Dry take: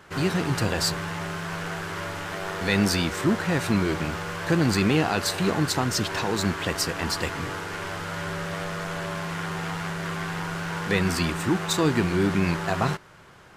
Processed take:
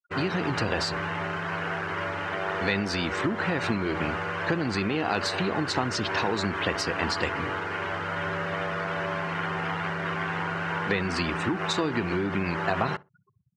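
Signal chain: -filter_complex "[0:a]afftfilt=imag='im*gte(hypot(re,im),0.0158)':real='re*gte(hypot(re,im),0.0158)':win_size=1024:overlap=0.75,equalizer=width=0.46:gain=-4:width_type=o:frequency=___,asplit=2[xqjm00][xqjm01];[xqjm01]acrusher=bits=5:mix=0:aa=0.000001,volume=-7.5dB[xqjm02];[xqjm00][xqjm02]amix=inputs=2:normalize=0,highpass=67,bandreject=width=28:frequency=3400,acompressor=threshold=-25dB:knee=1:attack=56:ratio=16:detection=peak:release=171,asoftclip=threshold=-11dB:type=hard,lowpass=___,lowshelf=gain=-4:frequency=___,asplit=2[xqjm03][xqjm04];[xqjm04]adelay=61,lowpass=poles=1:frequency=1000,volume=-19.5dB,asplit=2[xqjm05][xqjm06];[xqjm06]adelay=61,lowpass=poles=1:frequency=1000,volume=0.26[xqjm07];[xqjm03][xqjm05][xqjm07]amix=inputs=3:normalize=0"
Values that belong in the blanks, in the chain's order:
150, 4300, 270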